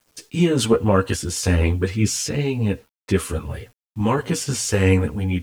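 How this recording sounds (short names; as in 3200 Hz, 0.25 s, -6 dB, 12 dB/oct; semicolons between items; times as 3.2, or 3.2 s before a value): random-step tremolo; a quantiser's noise floor 10-bit, dither none; a shimmering, thickened sound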